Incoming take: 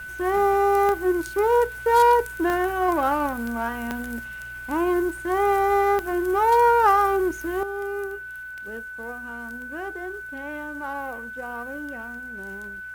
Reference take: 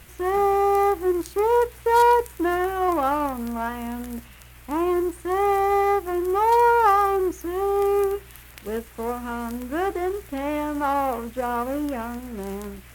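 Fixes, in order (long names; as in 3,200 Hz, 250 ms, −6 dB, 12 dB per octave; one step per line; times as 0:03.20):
click removal
notch filter 1,500 Hz, Q 30
level correction +9.5 dB, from 0:07.63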